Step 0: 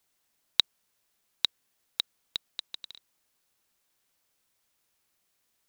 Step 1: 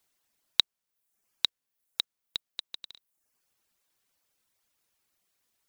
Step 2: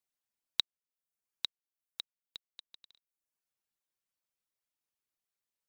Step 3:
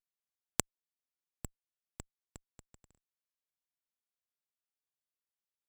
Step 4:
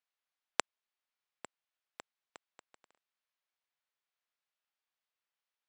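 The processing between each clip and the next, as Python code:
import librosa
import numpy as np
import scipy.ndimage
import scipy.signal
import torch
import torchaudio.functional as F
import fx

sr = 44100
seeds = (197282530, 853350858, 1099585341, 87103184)

y1 = fx.dereverb_blind(x, sr, rt60_s=0.71)
y2 = fx.upward_expand(y1, sr, threshold_db=-36.0, expansion=1.5)
y2 = y2 * librosa.db_to_amplitude(-7.5)
y3 = np.abs(y2)
y3 = fx.cheby_harmonics(y3, sr, harmonics=(3, 4), levels_db=(-7, -23), full_scale_db=-9.0)
y3 = y3 * librosa.db_to_amplitude(4.0)
y4 = fx.bandpass_edges(y3, sr, low_hz=680.0, high_hz=3700.0)
y4 = y4 * librosa.db_to_amplitude(7.5)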